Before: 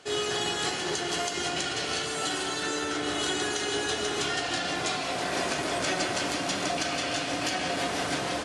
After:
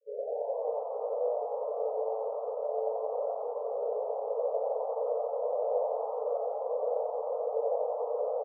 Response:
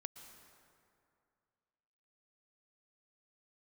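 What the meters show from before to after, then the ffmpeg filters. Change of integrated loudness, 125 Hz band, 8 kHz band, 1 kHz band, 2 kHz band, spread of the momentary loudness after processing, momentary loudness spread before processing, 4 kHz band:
−4.5 dB, below −40 dB, below −40 dB, −5.0 dB, below −40 dB, 3 LU, 2 LU, below −40 dB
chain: -filter_complex "[0:a]afwtdn=0.0178,asplit=2[link_01][link_02];[link_02]aeval=exprs='(mod(21.1*val(0)+1,2)-1)/21.1':channel_layout=same,volume=-5.5dB[link_03];[link_01][link_03]amix=inputs=2:normalize=0,flanger=delay=0.1:depth=1.8:regen=37:speed=0.53:shape=sinusoidal,acrusher=samples=37:mix=1:aa=0.000001,asuperpass=centerf=510:order=20:qfactor=3,asplit=2[link_04][link_05];[link_05]asplit=7[link_06][link_07][link_08][link_09][link_10][link_11][link_12];[link_06]adelay=88,afreqshift=110,volume=-4dB[link_13];[link_07]adelay=176,afreqshift=220,volume=-9.4dB[link_14];[link_08]adelay=264,afreqshift=330,volume=-14.7dB[link_15];[link_09]adelay=352,afreqshift=440,volume=-20.1dB[link_16];[link_10]adelay=440,afreqshift=550,volume=-25.4dB[link_17];[link_11]adelay=528,afreqshift=660,volume=-30.8dB[link_18];[link_12]adelay=616,afreqshift=770,volume=-36.1dB[link_19];[link_13][link_14][link_15][link_16][link_17][link_18][link_19]amix=inputs=7:normalize=0[link_20];[link_04][link_20]amix=inputs=2:normalize=0,volume=5.5dB"

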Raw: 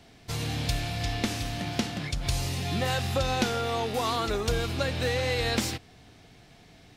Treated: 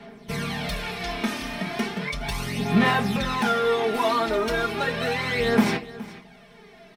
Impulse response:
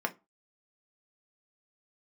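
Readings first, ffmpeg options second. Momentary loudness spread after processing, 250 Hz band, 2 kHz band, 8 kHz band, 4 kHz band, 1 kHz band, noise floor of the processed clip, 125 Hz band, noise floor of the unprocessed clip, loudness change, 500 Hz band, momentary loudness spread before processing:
9 LU, +7.5 dB, +7.0 dB, −3.5 dB, +1.0 dB, +6.0 dB, −50 dBFS, −1.5 dB, −54 dBFS, +4.5 dB, +5.0 dB, 5 LU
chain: -filter_complex "[0:a]equalizer=frequency=150:width_type=o:width=1.4:gain=-2.5,aecho=1:1:4.9:0.79,asoftclip=type=hard:threshold=-22dB,aphaser=in_gain=1:out_gain=1:delay=3.3:decay=0.56:speed=0.35:type=sinusoidal,aecho=1:1:418:0.126[link_01];[1:a]atrim=start_sample=2205[link_02];[link_01][link_02]afir=irnorm=-1:irlink=0,volume=-2.5dB"

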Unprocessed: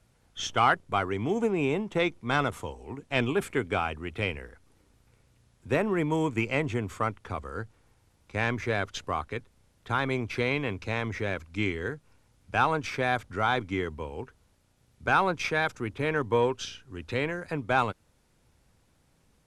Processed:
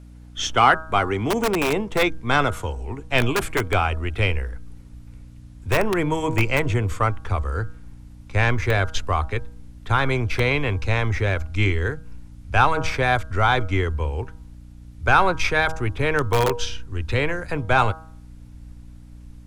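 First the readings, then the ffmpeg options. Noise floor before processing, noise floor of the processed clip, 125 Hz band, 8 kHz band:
−67 dBFS, −43 dBFS, +11.0 dB, +9.0 dB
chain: -filter_complex "[0:a]asubboost=boost=10.5:cutoff=60,bandreject=frequency=159.4:width_type=h:width=4,bandreject=frequency=318.8:width_type=h:width=4,bandreject=frequency=478.2:width_type=h:width=4,bandreject=frequency=637.6:width_type=h:width=4,bandreject=frequency=797:width_type=h:width=4,bandreject=frequency=956.4:width_type=h:width=4,bandreject=frequency=1115.8:width_type=h:width=4,bandreject=frequency=1275.2:width_type=h:width=4,bandreject=frequency=1434.6:width_type=h:width=4,bandreject=frequency=1594:width_type=h:width=4,acrossover=split=180|510|5600[link_01][link_02][link_03][link_04];[link_02]aeval=exprs='(mod(18.8*val(0)+1,2)-1)/18.8':channel_layout=same[link_05];[link_01][link_05][link_03][link_04]amix=inputs=4:normalize=0,aeval=exprs='val(0)+0.00355*(sin(2*PI*60*n/s)+sin(2*PI*2*60*n/s)/2+sin(2*PI*3*60*n/s)/3+sin(2*PI*4*60*n/s)/4+sin(2*PI*5*60*n/s)/5)':channel_layout=same,volume=7.5dB"

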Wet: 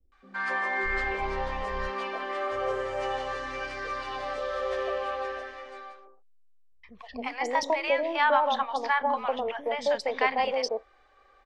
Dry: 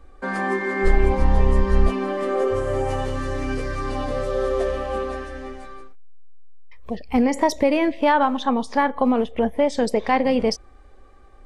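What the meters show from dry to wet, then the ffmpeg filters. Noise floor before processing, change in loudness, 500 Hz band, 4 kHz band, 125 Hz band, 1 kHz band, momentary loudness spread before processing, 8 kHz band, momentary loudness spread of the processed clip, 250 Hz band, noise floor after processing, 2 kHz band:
−46 dBFS, −7.0 dB, −7.5 dB, −2.0 dB, −21.0 dB, −3.5 dB, 9 LU, −7.5 dB, 11 LU, −19.0 dB, −61 dBFS, −0.5 dB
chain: -filter_complex "[0:a]acrossover=split=520 5700:gain=0.0891 1 0.0708[link_01][link_02][link_03];[link_01][link_02][link_03]amix=inputs=3:normalize=0,acrossover=split=270|860[link_04][link_05][link_06];[link_06]adelay=120[link_07];[link_05]adelay=270[link_08];[link_04][link_08][link_07]amix=inputs=3:normalize=0"

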